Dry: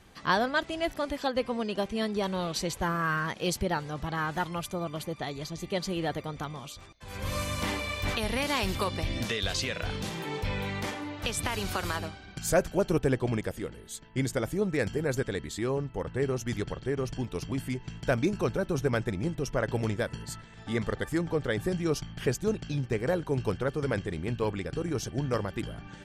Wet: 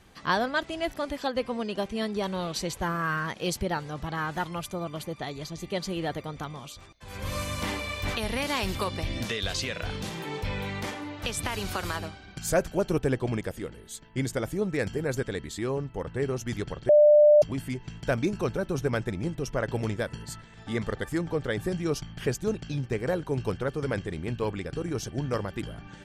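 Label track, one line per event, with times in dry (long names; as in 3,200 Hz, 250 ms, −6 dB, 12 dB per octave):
16.890000	17.420000	beep over 596 Hz −13 dBFS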